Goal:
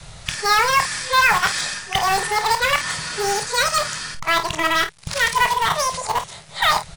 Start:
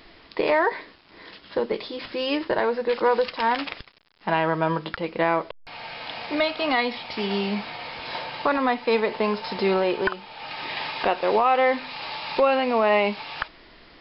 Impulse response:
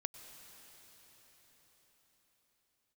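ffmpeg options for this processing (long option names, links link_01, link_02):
-filter_complex "[0:a]areverse,adynamicequalizer=threshold=0.0112:dfrequency=320:dqfactor=2:tfrequency=320:tqfactor=2:attack=5:release=100:ratio=0.375:range=2.5:mode=cutabove:tftype=bell,asplit=2[link_01][link_02];[link_02]aeval=exprs='(mod(10.6*val(0)+1,2)-1)/10.6':channel_layout=same,volume=-9.5dB[link_03];[link_01][link_03]amix=inputs=2:normalize=0,asetrate=88641,aresample=44100,lowshelf=frequency=210:width_type=q:width=3:gain=8.5,asplit=2[link_04][link_05];[link_05]aecho=0:1:25|51:0.316|0.251[link_06];[link_04][link_06]amix=inputs=2:normalize=0,volume=4dB"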